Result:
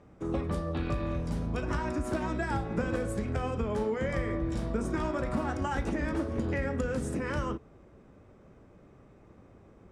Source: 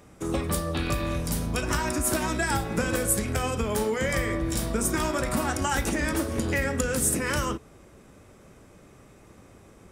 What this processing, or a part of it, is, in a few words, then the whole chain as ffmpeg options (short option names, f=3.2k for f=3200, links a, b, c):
through cloth: -af "lowpass=6.6k,highshelf=f=2.2k:g=-14,volume=-3dB"